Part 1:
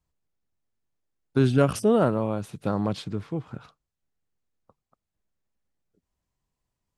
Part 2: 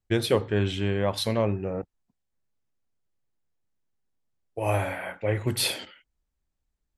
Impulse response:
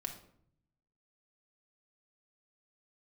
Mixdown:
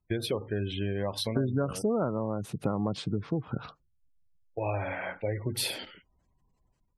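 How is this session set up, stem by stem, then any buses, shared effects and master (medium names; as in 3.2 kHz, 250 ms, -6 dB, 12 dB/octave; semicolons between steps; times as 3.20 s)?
+0.5 dB, 0.00 s, no send, level rider gain up to 10 dB
-0.5 dB, 0.00 s, no send, none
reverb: none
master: spectral gate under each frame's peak -25 dB strong; compression 4:1, threshold -28 dBFS, peak gain reduction 17 dB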